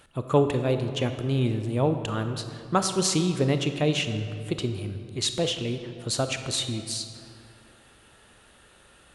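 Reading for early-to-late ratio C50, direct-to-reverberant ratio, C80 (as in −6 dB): 8.0 dB, 7.5 dB, 9.5 dB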